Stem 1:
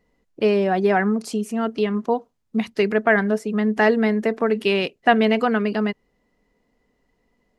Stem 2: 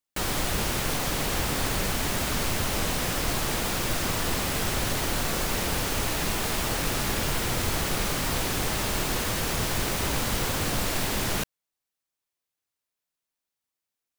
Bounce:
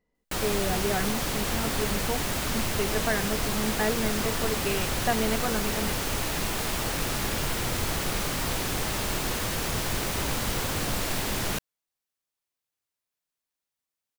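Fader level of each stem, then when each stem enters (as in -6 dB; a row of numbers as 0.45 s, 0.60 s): -11.0 dB, -1.5 dB; 0.00 s, 0.15 s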